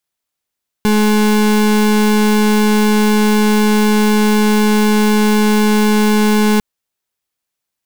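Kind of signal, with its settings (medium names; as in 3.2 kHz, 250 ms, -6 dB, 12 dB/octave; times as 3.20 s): pulse 212 Hz, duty 34% -11.5 dBFS 5.75 s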